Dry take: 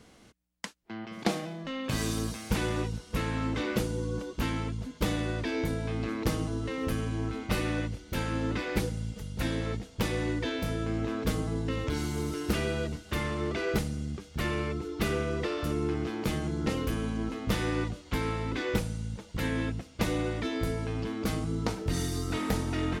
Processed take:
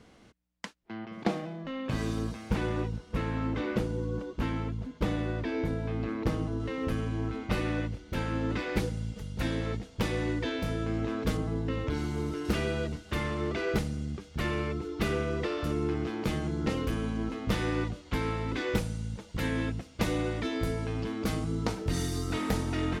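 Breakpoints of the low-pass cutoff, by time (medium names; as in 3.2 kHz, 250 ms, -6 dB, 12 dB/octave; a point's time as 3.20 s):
low-pass 6 dB/octave
3.8 kHz
from 1.05 s 1.8 kHz
from 6.60 s 3.2 kHz
from 8.50 s 5.8 kHz
from 11.37 s 2.6 kHz
from 12.45 s 5.8 kHz
from 18.49 s 12 kHz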